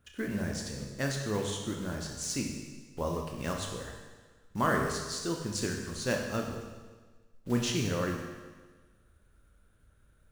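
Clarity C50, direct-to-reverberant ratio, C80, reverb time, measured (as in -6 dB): 3.5 dB, 1.0 dB, 5.0 dB, 1.4 s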